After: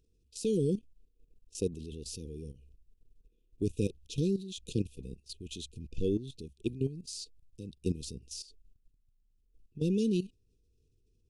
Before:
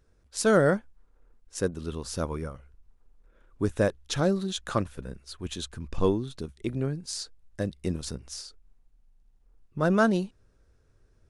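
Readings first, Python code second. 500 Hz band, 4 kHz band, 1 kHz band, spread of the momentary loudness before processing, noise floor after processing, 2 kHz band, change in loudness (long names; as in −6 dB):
−8.0 dB, −7.0 dB, below −40 dB, 17 LU, −72 dBFS, −23.0 dB, −6.5 dB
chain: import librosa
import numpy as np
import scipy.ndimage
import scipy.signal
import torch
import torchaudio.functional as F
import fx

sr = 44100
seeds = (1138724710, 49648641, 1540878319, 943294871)

y = fx.brickwall_bandstop(x, sr, low_hz=500.0, high_hz=2400.0)
y = fx.level_steps(y, sr, step_db=14)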